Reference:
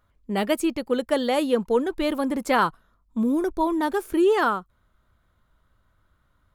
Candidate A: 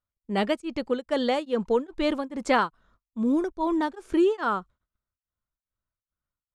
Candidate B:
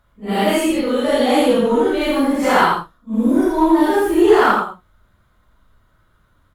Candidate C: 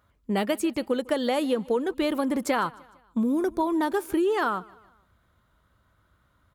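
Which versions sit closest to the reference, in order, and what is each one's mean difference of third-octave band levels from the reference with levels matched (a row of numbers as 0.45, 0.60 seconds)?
C, A, B; 2.5, 4.5, 7.0 decibels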